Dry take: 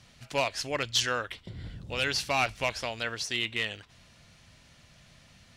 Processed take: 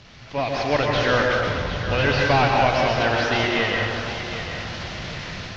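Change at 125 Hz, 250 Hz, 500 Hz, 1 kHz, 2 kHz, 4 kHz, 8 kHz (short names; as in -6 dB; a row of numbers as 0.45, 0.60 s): +16.0, +15.0, +13.5, +13.0, +10.0, +4.5, -3.0 dB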